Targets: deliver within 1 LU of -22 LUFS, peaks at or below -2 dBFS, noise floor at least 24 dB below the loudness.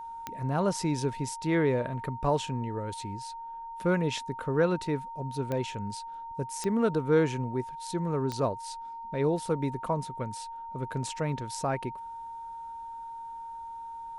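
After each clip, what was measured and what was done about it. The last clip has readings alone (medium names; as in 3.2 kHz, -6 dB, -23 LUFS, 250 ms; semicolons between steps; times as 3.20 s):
clicks found 4; steady tone 920 Hz; tone level -38 dBFS; loudness -31.5 LUFS; peak level -13.0 dBFS; loudness target -22.0 LUFS
-> de-click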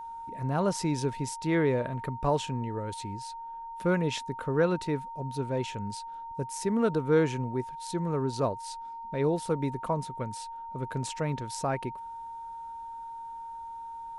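clicks found 0; steady tone 920 Hz; tone level -38 dBFS
-> band-stop 920 Hz, Q 30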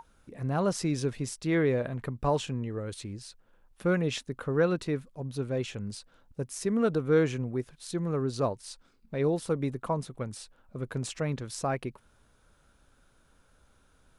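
steady tone not found; loudness -31.0 LUFS; peak level -13.0 dBFS; loudness target -22.0 LUFS
-> trim +9 dB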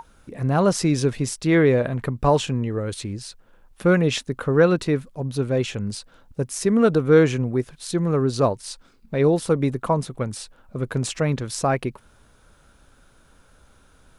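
loudness -22.0 LUFS; peak level -4.0 dBFS; noise floor -56 dBFS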